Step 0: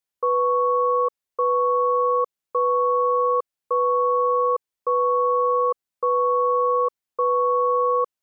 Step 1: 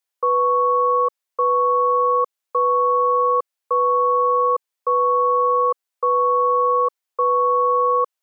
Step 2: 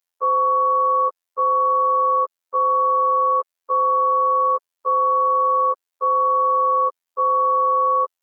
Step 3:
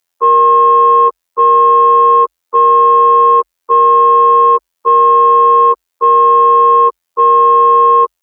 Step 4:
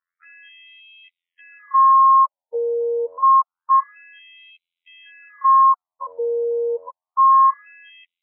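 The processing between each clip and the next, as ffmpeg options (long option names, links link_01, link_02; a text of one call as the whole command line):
ffmpeg -i in.wav -af "highpass=500,volume=4dB" out.wav
ffmpeg -i in.wav -af "afftfilt=real='hypot(re,im)*cos(PI*b)':imag='0':win_size=2048:overlap=0.75,volume=2dB" out.wav
ffmpeg -i in.wav -af "afreqshift=-47,acontrast=37,volume=5.5dB" out.wav
ffmpeg -i in.wav -af "afftfilt=real='re*between(b*sr/1024,610*pow(2900/610,0.5+0.5*sin(2*PI*0.27*pts/sr))/1.41,610*pow(2900/610,0.5+0.5*sin(2*PI*0.27*pts/sr))*1.41)':imag='im*between(b*sr/1024,610*pow(2900/610,0.5+0.5*sin(2*PI*0.27*pts/sr))/1.41,610*pow(2900/610,0.5+0.5*sin(2*PI*0.27*pts/sr))*1.41)':win_size=1024:overlap=0.75,volume=-4dB" out.wav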